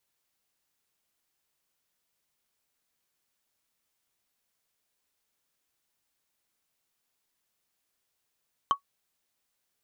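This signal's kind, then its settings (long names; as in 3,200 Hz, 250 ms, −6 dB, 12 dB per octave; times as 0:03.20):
struck wood, lowest mode 1,120 Hz, decay 0.10 s, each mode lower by 11 dB, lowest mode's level −15 dB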